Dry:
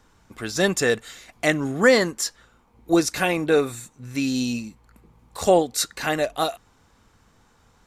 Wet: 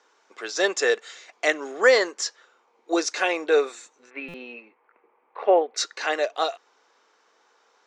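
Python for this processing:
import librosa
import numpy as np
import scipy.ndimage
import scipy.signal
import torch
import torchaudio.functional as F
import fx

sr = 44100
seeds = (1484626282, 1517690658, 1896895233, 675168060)

y = fx.ellip_bandpass(x, sr, low_hz=400.0, high_hz=fx.steps((0.0, 6500.0), (4.09, 2400.0), (5.76, 6100.0)), order=3, stop_db=50)
y = fx.buffer_glitch(y, sr, at_s=(4.28,), block=256, repeats=9)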